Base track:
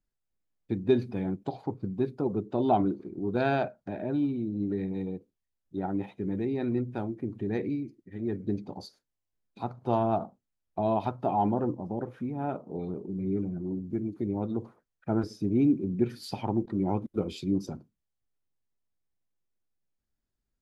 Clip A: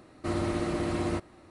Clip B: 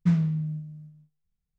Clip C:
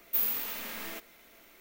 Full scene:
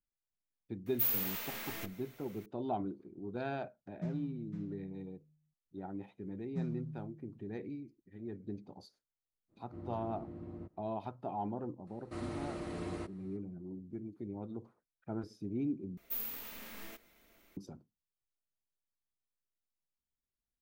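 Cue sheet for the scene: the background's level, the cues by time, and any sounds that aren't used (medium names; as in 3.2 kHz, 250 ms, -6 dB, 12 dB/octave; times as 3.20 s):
base track -12 dB
0.86 s: add C -3 dB + phase dispersion lows, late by 82 ms, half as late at 320 Hz
3.96 s: add B -17.5 dB + delay 506 ms -7 dB
6.50 s: add B -16 dB + peaking EQ 2.3 kHz -13 dB 1 oct
9.48 s: add A -13 dB, fades 0.05 s + band-pass filter 150 Hz, Q 0.69
11.87 s: add A -11.5 dB
15.97 s: replace with C -10 dB + bass shelf 230 Hz +9 dB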